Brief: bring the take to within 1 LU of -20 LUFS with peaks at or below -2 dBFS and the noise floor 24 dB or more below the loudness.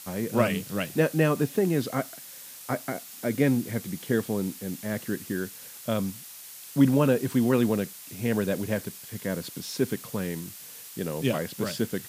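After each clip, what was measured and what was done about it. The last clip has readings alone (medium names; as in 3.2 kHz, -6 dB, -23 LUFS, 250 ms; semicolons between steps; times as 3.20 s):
noise floor -44 dBFS; noise floor target -52 dBFS; loudness -28.0 LUFS; peak level -7.5 dBFS; loudness target -20.0 LUFS
-> noise reduction 8 dB, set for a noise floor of -44 dBFS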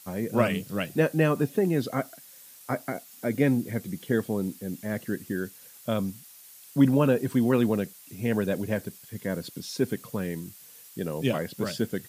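noise floor -50 dBFS; noise floor target -52 dBFS
-> noise reduction 6 dB, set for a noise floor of -50 dBFS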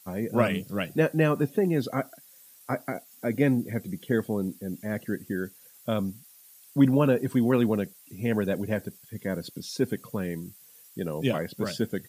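noise floor -54 dBFS; loudness -28.0 LUFS; peak level -7.5 dBFS; loudness target -20.0 LUFS
-> trim +8 dB; peak limiter -2 dBFS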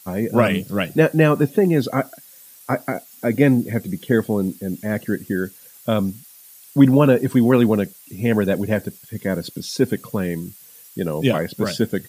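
loudness -20.0 LUFS; peak level -2.0 dBFS; noise floor -46 dBFS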